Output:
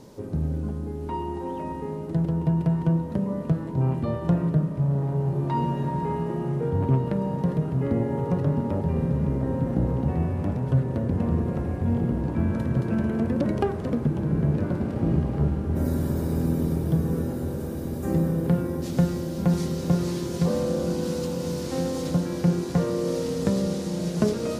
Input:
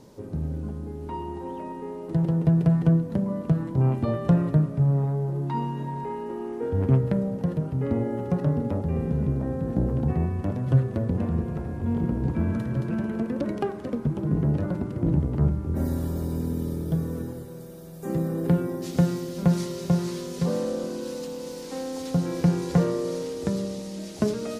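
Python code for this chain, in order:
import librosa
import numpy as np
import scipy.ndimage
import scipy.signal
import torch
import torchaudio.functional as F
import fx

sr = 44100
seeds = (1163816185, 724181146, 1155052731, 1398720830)

y = fx.rider(x, sr, range_db=3, speed_s=0.5)
y = fx.echo_diffused(y, sr, ms=1605, feedback_pct=70, wet_db=-8)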